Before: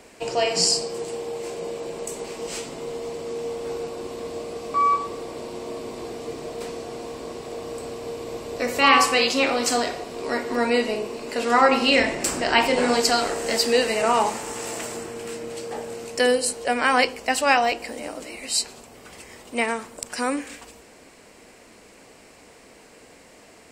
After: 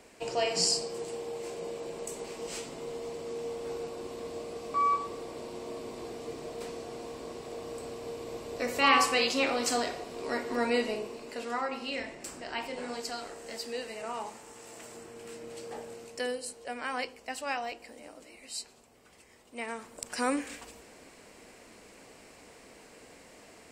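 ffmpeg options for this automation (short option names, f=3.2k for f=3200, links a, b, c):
-af "volume=13dB,afade=t=out:st=10.86:d=0.8:silence=0.298538,afade=t=in:st=14.67:d=1.05:silence=0.375837,afade=t=out:st=15.72:d=0.63:silence=0.473151,afade=t=in:st=19.59:d=0.71:silence=0.266073"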